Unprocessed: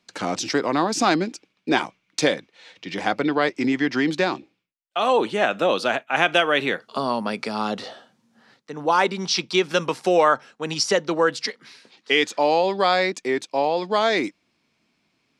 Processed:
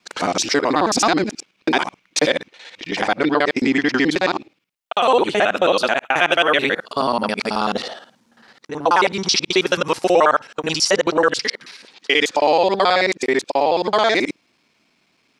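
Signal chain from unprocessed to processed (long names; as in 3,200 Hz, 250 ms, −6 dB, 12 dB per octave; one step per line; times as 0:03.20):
reversed piece by piece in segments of 54 ms
low-shelf EQ 220 Hz −8 dB
in parallel at +3 dB: brickwall limiter −16 dBFS, peak gain reduction 12 dB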